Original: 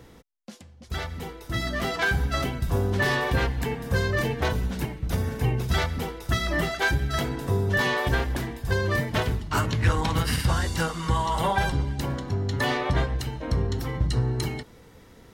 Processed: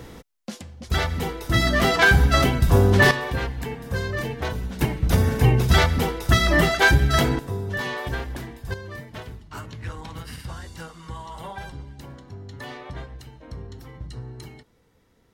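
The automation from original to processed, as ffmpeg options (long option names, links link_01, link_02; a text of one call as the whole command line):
ffmpeg -i in.wav -af "asetnsamples=nb_out_samples=441:pad=0,asendcmd='3.11 volume volume -2.5dB;4.81 volume volume 7.5dB;7.39 volume volume -4.5dB;8.74 volume volume -12dB',volume=8.5dB" out.wav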